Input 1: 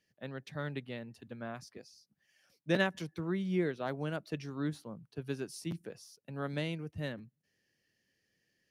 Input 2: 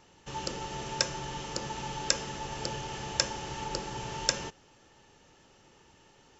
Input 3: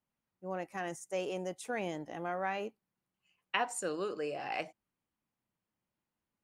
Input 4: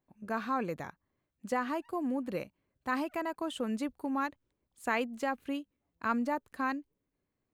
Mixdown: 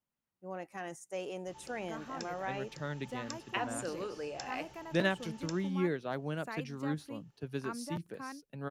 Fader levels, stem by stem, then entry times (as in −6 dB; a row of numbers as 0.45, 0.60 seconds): −0.5, −18.5, −3.5, −11.5 decibels; 2.25, 1.20, 0.00, 1.60 seconds